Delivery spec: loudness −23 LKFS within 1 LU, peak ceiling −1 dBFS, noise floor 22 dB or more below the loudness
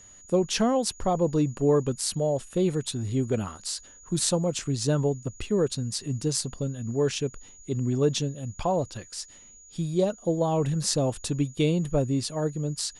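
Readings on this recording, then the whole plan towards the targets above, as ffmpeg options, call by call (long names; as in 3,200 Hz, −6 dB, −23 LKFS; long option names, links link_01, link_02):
interfering tone 6,800 Hz; level of the tone −49 dBFS; integrated loudness −27.0 LKFS; sample peak −7.0 dBFS; target loudness −23.0 LKFS
→ -af "bandreject=frequency=6800:width=30"
-af "volume=4dB"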